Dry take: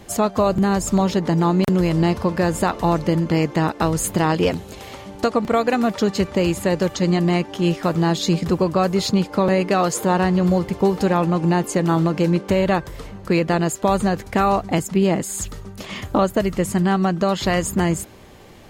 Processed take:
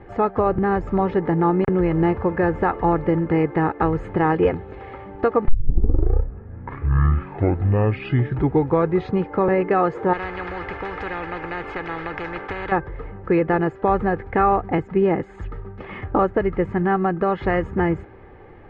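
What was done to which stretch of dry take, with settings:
0:05.48: tape start 3.73 s
0:10.13–0:12.72: every bin compressed towards the loudest bin 4 to 1
whole clip: Chebyshev low-pass filter 1,900 Hz, order 3; comb filter 2.4 ms, depth 46%

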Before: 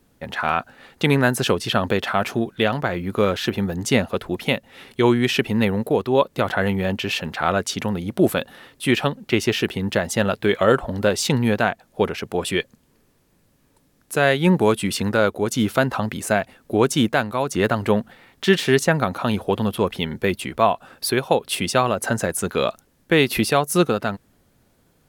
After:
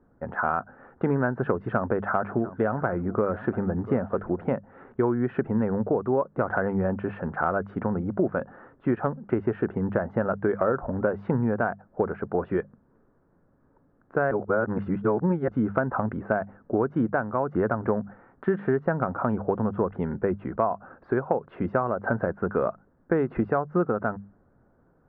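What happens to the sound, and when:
0:01.62–0:04.48: single-tap delay 692 ms −18.5 dB
0:14.31–0:15.48: reverse
whole clip: Chebyshev low-pass filter 1,500 Hz, order 4; mains-hum notches 50/100/150/200 Hz; downward compressor, threshold −20 dBFS

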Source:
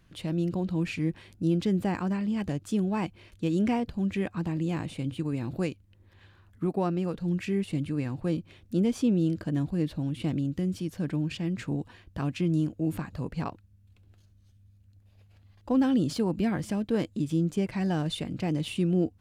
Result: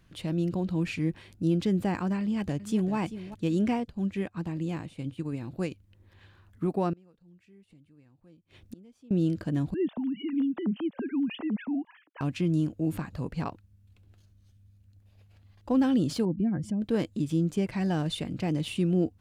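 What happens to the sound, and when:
0:02.20–0:02.95: delay throw 390 ms, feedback 25%, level −13 dB
0:03.58–0:05.71: expander for the loud parts, over −46 dBFS
0:06.93–0:09.11: gate with flip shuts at −30 dBFS, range −28 dB
0:09.74–0:12.21: three sine waves on the formant tracks
0:16.25–0:16.82: expanding power law on the bin magnitudes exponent 1.7

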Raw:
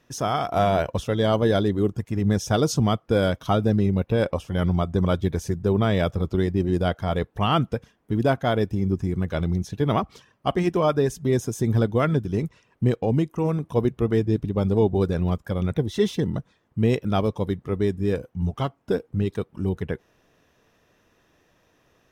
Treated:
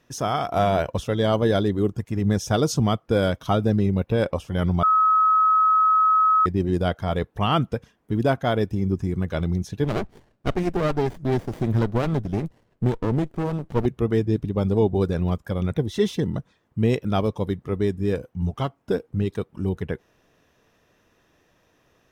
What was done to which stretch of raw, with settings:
0:04.83–0:06.46: beep over 1,280 Hz −14.5 dBFS
0:09.84–0:13.86: windowed peak hold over 33 samples

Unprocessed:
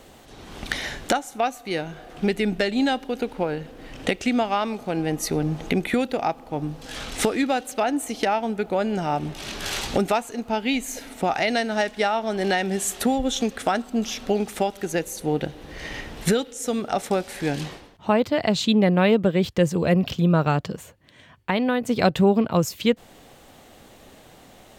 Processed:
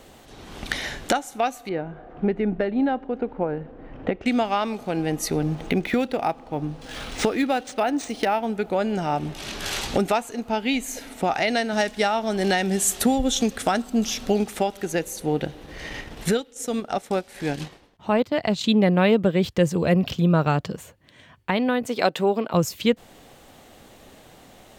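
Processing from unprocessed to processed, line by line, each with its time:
0:01.69–0:04.26: low-pass filter 1,300 Hz
0:05.55–0:08.47: linearly interpolated sample-rate reduction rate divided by 3×
0:11.73–0:14.44: bass and treble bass +4 dB, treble +5 dB
0:15.56–0:18.64: transient designer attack −3 dB, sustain −10 dB
0:21.86–0:22.54: high-pass filter 340 Hz

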